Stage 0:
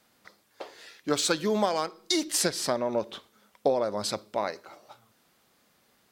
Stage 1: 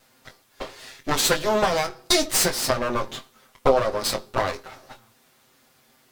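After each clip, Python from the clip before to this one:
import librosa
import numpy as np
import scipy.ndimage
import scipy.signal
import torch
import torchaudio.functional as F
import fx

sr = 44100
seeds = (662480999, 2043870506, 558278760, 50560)

y = fx.lower_of_two(x, sr, delay_ms=7.7)
y = fx.doubler(y, sr, ms=22.0, db=-9.0)
y = y * librosa.db_to_amplitude(7.5)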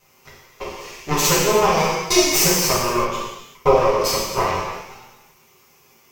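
y = fx.ripple_eq(x, sr, per_octave=0.77, db=10)
y = fx.rev_gated(y, sr, seeds[0], gate_ms=410, shape='falling', drr_db=-5.5)
y = y * librosa.db_to_amplitude(-2.5)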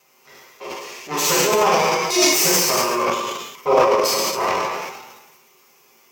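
y = scipy.signal.sosfilt(scipy.signal.butter(2, 250.0, 'highpass', fs=sr, output='sos'), x)
y = fx.transient(y, sr, attack_db=-6, sustain_db=11)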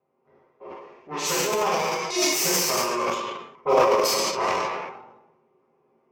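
y = fx.env_lowpass(x, sr, base_hz=610.0, full_db=-15.0)
y = fx.rider(y, sr, range_db=10, speed_s=2.0)
y = y * librosa.db_to_amplitude(-6.0)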